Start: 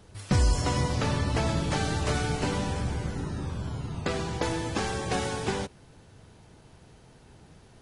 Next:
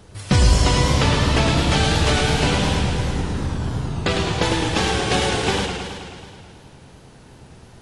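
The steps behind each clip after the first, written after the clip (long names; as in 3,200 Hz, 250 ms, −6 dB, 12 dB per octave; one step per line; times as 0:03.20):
dynamic equaliser 3,200 Hz, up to +7 dB, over −50 dBFS, Q 1.3
feedback echo with a swinging delay time 107 ms, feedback 71%, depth 132 cents, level −6 dB
level +7 dB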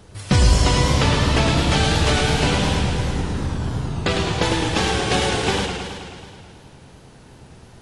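no processing that can be heard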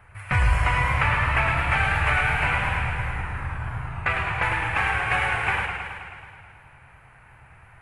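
drawn EQ curve 120 Hz 0 dB, 220 Hz −15 dB, 440 Hz −11 dB, 740 Hz +2 dB, 1,400 Hz +9 dB, 2,400 Hz +10 dB, 3,500 Hz −14 dB, 5,800 Hz −21 dB, 10,000 Hz −5 dB
level −5.5 dB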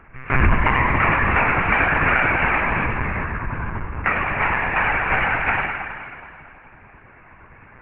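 Butterworth low-pass 2,600 Hz 36 dB per octave
one-pitch LPC vocoder at 8 kHz 130 Hz
level +4 dB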